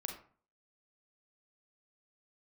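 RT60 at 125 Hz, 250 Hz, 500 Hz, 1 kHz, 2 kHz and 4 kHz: 0.55, 0.50, 0.45, 0.45, 0.35, 0.25 seconds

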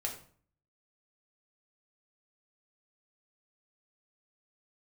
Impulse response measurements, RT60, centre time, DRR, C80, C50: 0.50 s, 20 ms, 0.0 dB, 12.0 dB, 8.5 dB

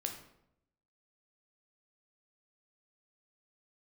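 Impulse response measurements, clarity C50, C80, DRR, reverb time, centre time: 7.5 dB, 10.5 dB, 3.0 dB, 0.75 s, 21 ms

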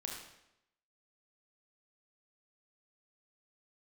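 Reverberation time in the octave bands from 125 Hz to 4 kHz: 0.80, 0.85, 0.85, 0.80, 0.80, 0.75 seconds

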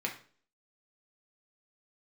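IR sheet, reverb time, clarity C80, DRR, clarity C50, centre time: 0.45 s, 14.5 dB, −1.0 dB, 9.5 dB, 17 ms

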